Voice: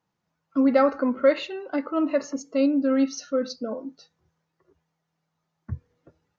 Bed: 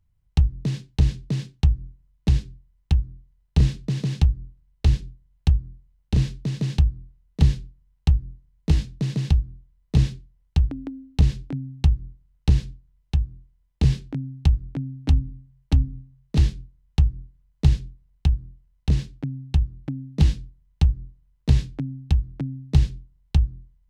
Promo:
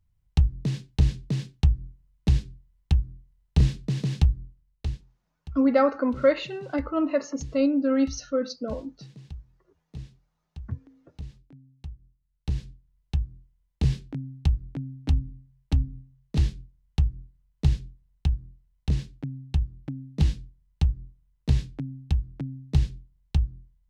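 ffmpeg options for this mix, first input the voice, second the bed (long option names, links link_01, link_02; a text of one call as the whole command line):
ffmpeg -i stem1.wav -i stem2.wav -filter_complex "[0:a]adelay=5000,volume=-1dB[link_01];[1:a]volume=14.5dB,afade=type=out:start_time=4.35:duration=0.7:silence=0.112202,afade=type=in:start_time=12.13:duration=0.89:silence=0.149624[link_02];[link_01][link_02]amix=inputs=2:normalize=0" out.wav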